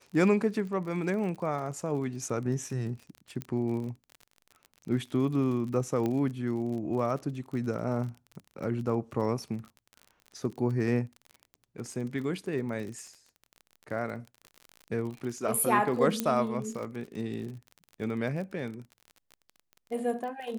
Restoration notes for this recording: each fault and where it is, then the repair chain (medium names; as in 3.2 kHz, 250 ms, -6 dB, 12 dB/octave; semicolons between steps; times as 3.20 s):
crackle 39 per s -37 dBFS
3.42 s: pop -20 dBFS
6.06 s: pop -19 dBFS
16.20 s: pop -12 dBFS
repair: de-click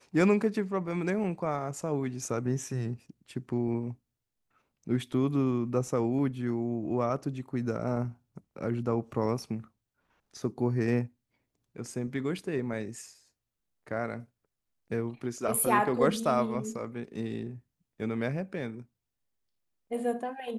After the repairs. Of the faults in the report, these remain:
nothing left